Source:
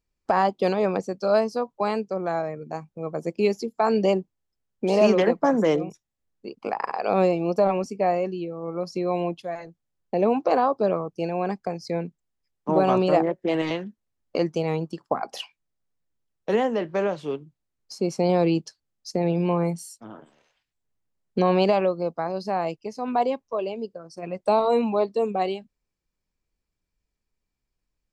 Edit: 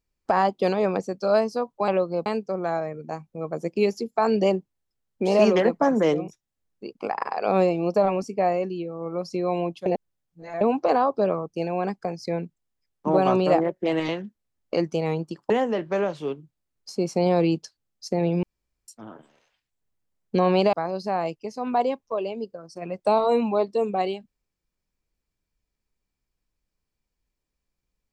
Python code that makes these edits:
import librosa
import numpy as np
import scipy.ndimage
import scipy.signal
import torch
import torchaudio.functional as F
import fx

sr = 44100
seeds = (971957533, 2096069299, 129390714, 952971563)

y = fx.edit(x, sr, fx.reverse_span(start_s=9.48, length_s=0.75),
    fx.cut(start_s=15.12, length_s=1.41),
    fx.room_tone_fill(start_s=19.46, length_s=0.45),
    fx.move(start_s=21.76, length_s=0.38, to_s=1.88), tone=tone)